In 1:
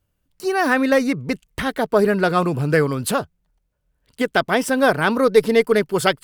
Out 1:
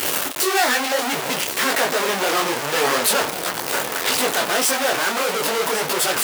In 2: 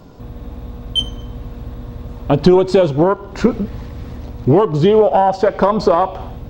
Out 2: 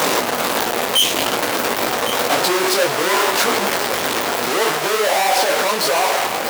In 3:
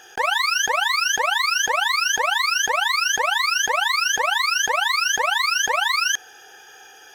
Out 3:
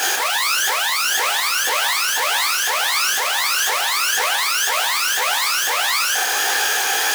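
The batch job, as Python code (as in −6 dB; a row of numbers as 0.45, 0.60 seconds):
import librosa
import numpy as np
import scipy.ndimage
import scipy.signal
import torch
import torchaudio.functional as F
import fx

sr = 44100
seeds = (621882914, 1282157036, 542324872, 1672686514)

p1 = np.sign(x) * np.sqrt(np.mean(np.square(x)))
p2 = scipy.signal.sosfilt(scipy.signal.butter(2, 480.0, 'highpass', fs=sr, output='sos'), p1)
p3 = fx.rider(p2, sr, range_db=10, speed_s=2.0)
p4 = p3 + fx.echo_single(p3, sr, ms=1106, db=-12.5, dry=0)
p5 = fx.detune_double(p4, sr, cents=58)
y = p5 * 10.0 ** (6.0 / 20.0)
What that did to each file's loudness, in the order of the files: −0.5, −2.0, +2.0 LU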